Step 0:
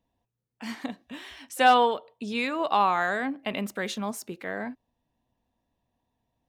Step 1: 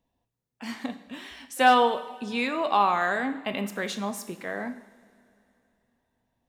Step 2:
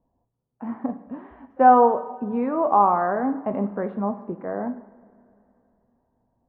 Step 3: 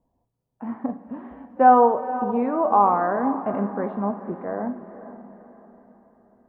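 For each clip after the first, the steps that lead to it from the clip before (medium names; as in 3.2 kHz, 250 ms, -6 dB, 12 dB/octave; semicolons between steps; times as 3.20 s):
two-slope reverb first 0.7 s, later 3.1 s, from -17 dB, DRR 8.5 dB
low-pass 1.1 kHz 24 dB/octave; trim +6 dB
echo that smears into a reverb 485 ms, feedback 44%, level -13 dB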